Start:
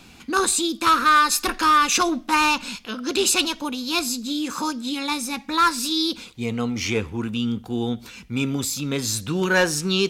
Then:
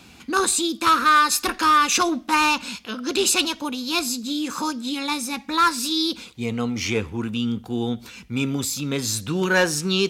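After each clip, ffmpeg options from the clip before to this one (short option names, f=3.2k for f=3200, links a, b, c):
-af "highpass=45"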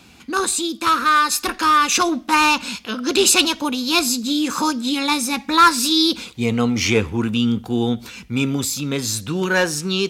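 -af "dynaudnorm=f=530:g=9:m=11.5dB"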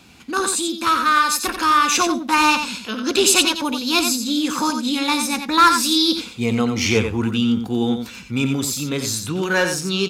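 -af "aecho=1:1:89:0.447,volume=-1dB"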